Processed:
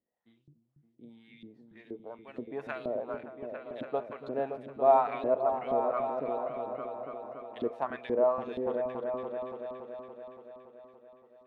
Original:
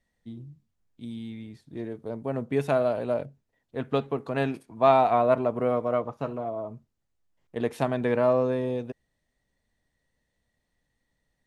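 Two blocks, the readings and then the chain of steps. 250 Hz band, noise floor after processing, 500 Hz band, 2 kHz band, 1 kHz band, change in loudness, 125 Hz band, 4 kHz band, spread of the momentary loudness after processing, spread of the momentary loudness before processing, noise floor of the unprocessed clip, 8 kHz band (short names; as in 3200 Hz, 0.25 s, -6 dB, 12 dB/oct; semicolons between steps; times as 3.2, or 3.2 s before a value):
-9.5 dB, -71 dBFS, -4.5 dB, -8.0 dB, -4.0 dB, -5.5 dB, -18.0 dB, under -10 dB, 17 LU, 20 LU, -79 dBFS, n/a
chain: LFO band-pass saw up 2.1 Hz 300–3900 Hz; repeats that get brighter 0.284 s, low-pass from 200 Hz, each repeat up 2 oct, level -3 dB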